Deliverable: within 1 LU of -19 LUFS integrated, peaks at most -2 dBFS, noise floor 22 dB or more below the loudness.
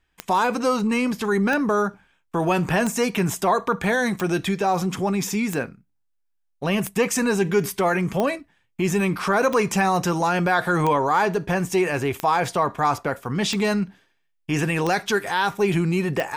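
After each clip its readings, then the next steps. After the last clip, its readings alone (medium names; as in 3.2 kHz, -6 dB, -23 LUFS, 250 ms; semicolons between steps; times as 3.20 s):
clicks found 13; loudness -22.5 LUFS; peak level -7.5 dBFS; loudness target -19.0 LUFS
-> de-click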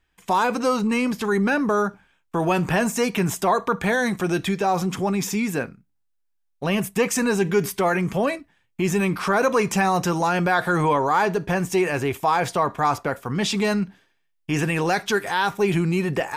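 clicks found 0; loudness -22.5 LUFS; peak level -8.0 dBFS; loudness target -19.0 LUFS
-> trim +3.5 dB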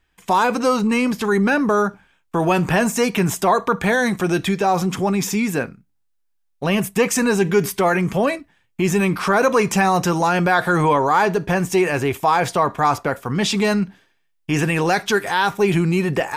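loudness -19.0 LUFS; peak level -4.5 dBFS; noise floor -67 dBFS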